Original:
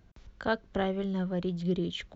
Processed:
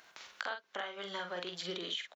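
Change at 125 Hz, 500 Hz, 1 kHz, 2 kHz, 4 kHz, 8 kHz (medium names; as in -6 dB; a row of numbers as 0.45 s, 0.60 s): -22.0 dB, -10.0 dB, -5.5 dB, -2.0 dB, +3.0 dB, no reading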